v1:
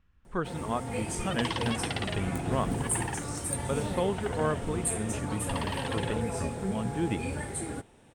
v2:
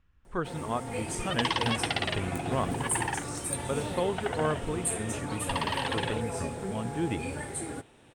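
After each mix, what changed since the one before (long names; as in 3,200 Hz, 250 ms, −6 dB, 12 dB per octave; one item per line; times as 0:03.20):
first sound: add high-pass filter 110 Hz 6 dB per octave
second sound +5.0 dB
master: add parametric band 200 Hz −6 dB 0.23 octaves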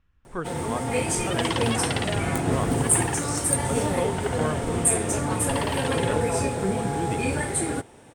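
first sound +10.0 dB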